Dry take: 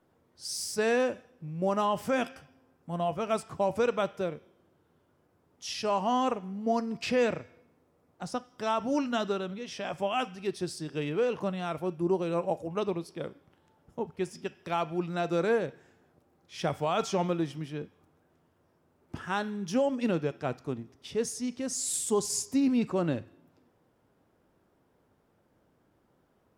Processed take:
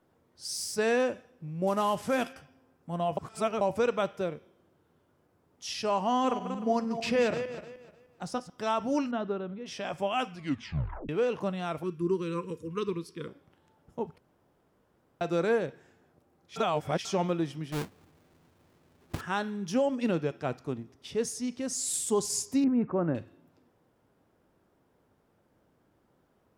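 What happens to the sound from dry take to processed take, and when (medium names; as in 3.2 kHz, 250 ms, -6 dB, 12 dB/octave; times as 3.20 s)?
1.67–2.33 s: CVSD coder 64 kbps
3.17–3.61 s: reverse
6.09–8.50 s: backward echo that repeats 152 ms, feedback 46%, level -9 dB
9.11–9.66 s: tape spacing loss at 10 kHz 39 dB
10.30 s: tape stop 0.79 s
11.83–13.28 s: elliptic band-stop 480–1000 Hz
14.18–15.21 s: room tone
16.56–17.05 s: reverse
17.72–19.21 s: square wave that keeps the level
22.64–23.15 s: low-pass 1.7 kHz 24 dB/octave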